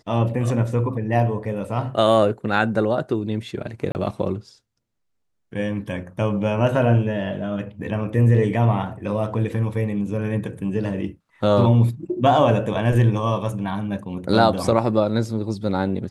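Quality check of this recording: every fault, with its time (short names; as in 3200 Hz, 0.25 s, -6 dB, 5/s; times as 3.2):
3.92–3.95 gap 29 ms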